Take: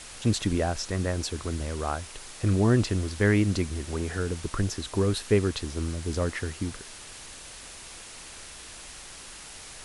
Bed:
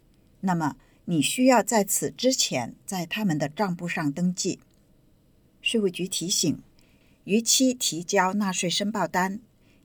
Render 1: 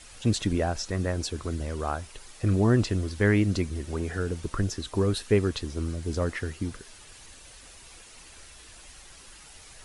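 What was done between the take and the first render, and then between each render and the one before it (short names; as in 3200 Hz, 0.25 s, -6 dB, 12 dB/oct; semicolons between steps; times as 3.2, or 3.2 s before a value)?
denoiser 8 dB, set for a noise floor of -44 dBFS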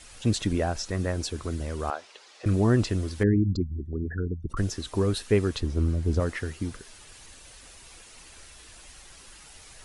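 1.9–2.46 Chebyshev band-pass 480–4900 Hz; 3.23–4.57 formant sharpening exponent 3; 5.6–6.2 tilt -2 dB/oct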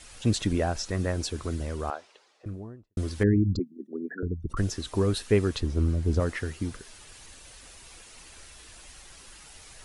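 1.52–2.97 studio fade out; 3.59–4.23 steep high-pass 210 Hz 48 dB/oct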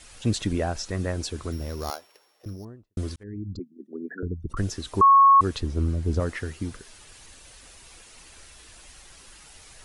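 1.52–2.65 sample sorter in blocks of 8 samples; 3.16–4.1 fade in; 5.01–5.41 bleep 1100 Hz -11 dBFS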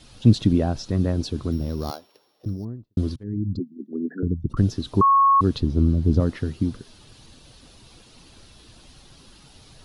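graphic EQ 125/250/2000/4000/8000 Hz +10/+8/-8/+6/-11 dB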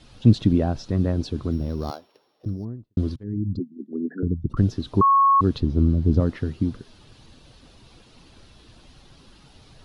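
high shelf 6000 Hz -11.5 dB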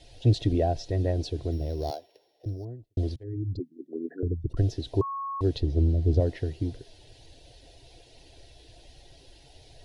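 fixed phaser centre 500 Hz, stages 4; small resonant body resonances 690/1900 Hz, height 8 dB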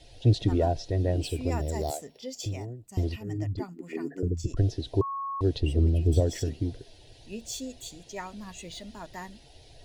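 add bed -16.5 dB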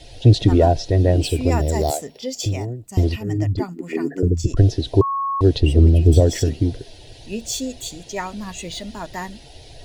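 gain +10.5 dB; limiter -2 dBFS, peak gain reduction 1.5 dB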